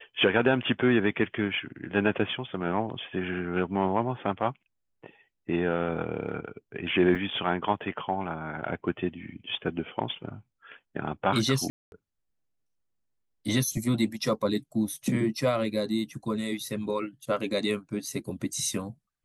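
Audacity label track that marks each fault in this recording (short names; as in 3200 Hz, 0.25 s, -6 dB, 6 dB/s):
7.150000	7.160000	gap 6.7 ms
11.700000	11.920000	gap 0.221 s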